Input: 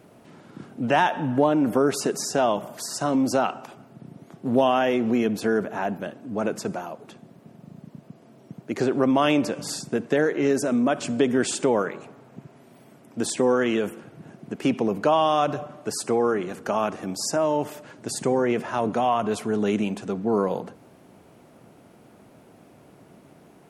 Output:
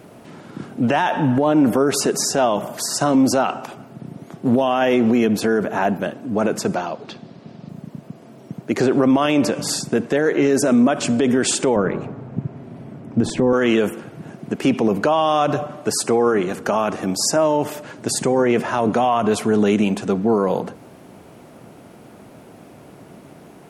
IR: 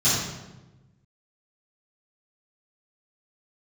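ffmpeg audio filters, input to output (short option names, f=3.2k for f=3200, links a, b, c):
-filter_complex "[0:a]asettb=1/sr,asplit=3[a][b][c];[a]atrim=end=6.754[d];[b]atrim=start=6.75:end=7.69,asetpts=PTS-STARTPTS,afade=t=in:d=0.004:c=qsin,afade=t=out:st=0.936:d=0.004:c=qsin,lowpass=f=4.6k:t=q:w=2.3[e];[c]atrim=start=7.686[f];[d][e]acrossfade=d=0.004:c1=hsin:c2=qsin[g];[g][f]acrossfade=d=0.004:c1=qsin:c2=hsin,asettb=1/sr,asplit=3[h][i][j];[h]atrim=end=11.764[k];[i]atrim=start=11.76:end=13.53,asetpts=PTS-STARTPTS,afade=t=in:d=0.004:c=qsin,afade=t=out:st=1.766:d=0.004:c=qsin,aemphasis=mode=reproduction:type=riaa[l];[j]atrim=start=13.526[m];[k][l]acrossfade=d=0.004:c1=hsin:c2=qsin[n];[n][m]acrossfade=d=0.004:c1=qsin:c2=hsin,alimiter=level_in=15.5dB:limit=-1dB:release=50:level=0:latency=1,volume=-7dB"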